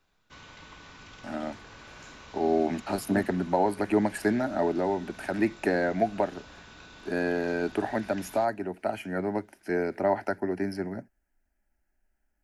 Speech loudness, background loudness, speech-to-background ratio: -29.0 LUFS, -48.5 LUFS, 19.5 dB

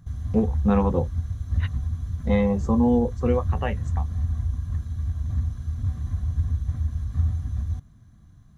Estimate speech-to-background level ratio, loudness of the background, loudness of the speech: 4.5 dB, -28.5 LUFS, -24.0 LUFS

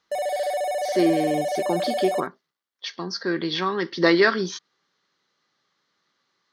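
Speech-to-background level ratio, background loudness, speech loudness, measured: 2.5 dB, -26.5 LUFS, -24.0 LUFS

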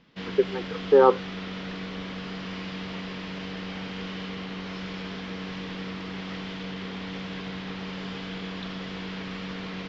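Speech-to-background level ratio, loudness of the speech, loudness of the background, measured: 13.5 dB, -22.0 LUFS, -35.5 LUFS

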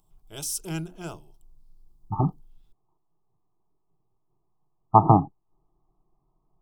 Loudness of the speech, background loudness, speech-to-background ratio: -21.5 LUFS, -33.5 LUFS, 12.0 dB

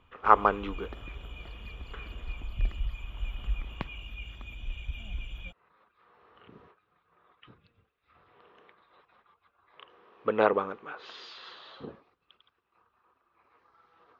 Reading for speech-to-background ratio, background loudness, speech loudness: 12.5 dB, -41.0 LUFS, -28.5 LUFS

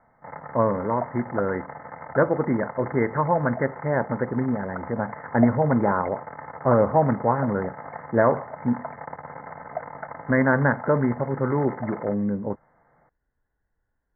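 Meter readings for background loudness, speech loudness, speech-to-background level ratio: -37.5 LUFS, -24.5 LUFS, 13.0 dB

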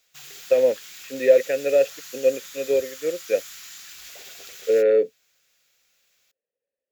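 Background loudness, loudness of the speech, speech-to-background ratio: -39.0 LUFS, -22.0 LUFS, 17.0 dB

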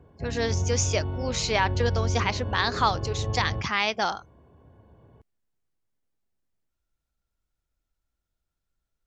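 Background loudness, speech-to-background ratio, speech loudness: -31.0 LUFS, 4.0 dB, -27.0 LUFS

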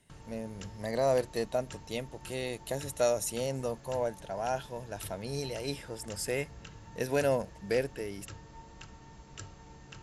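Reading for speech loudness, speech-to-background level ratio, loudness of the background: -34.0 LUFS, 16.0 dB, -50.0 LUFS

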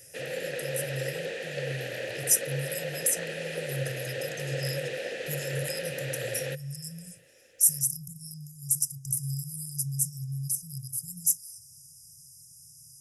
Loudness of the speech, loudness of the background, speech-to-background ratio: -30.0 LUFS, -35.0 LUFS, 5.0 dB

